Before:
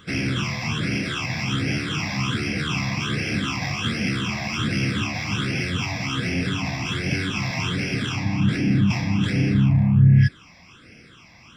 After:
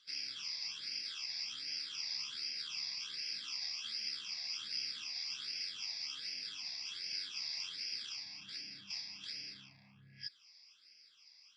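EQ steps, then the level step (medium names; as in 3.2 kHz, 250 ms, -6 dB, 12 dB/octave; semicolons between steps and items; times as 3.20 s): band-pass filter 4.7 kHz, Q 11; +3.0 dB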